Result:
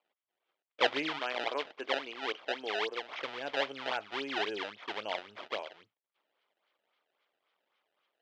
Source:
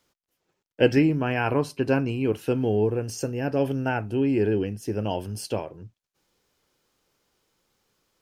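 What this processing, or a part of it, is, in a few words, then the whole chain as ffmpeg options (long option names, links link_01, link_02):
circuit-bent sampling toy: -filter_complex "[0:a]asettb=1/sr,asplit=3[link_01][link_02][link_03];[link_01]atrim=end=1.194[link_04];[link_02]atrim=start=1.19:end=3.14,asetpts=PTS-STARTPTS,afade=type=in:duration=0.004:curve=qsin,afade=type=out:start_time=1.946:duration=0.004:curve=qsin,highpass=260[link_05];[link_03]atrim=start=3.136[link_06];[link_04][link_05]acrossfade=duration=0.004:curve1=hsin:curve2=qsin[link_07];[link_07][link_06]acrossfade=duration=0.004:curve1=qsin:curve2=hsin,acrusher=samples=23:mix=1:aa=0.000001:lfo=1:lforange=36.8:lforate=3.7,highpass=590,equalizer=frequency=620:width_type=q:width=4:gain=3,equalizer=frequency=1200:width_type=q:width=4:gain=4,equalizer=frequency=2200:width_type=q:width=4:gain=5,equalizer=frequency=3200:width_type=q:width=4:gain=8,lowpass=frequency=4500:width=0.5412,lowpass=frequency=4500:width=1.3066,volume=-7dB"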